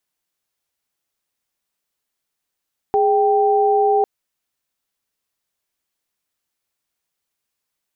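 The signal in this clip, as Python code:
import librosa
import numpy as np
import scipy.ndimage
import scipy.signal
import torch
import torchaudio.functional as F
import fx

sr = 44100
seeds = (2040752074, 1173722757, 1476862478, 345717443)

y = fx.chord(sr, length_s=1.1, notes=(68, 79), wave='sine', level_db=-15.5)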